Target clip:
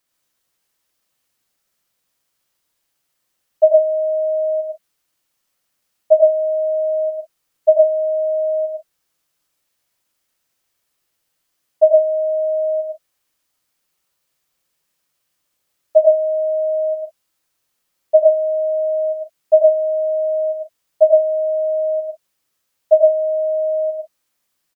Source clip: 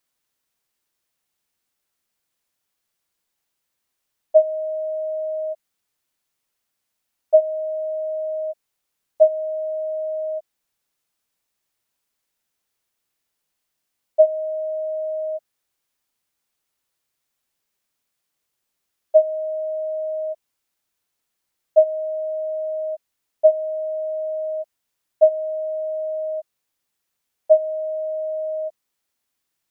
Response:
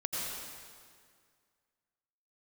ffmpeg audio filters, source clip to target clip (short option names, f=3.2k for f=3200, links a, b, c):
-filter_complex "[0:a]atempo=1.2[a];[1:a]atrim=start_sample=2205,afade=t=out:st=0.2:d=0.01,atrim=end_sample=9261[b];[a][b]afir=irnorm=-1:irlink=0,volume=4dB"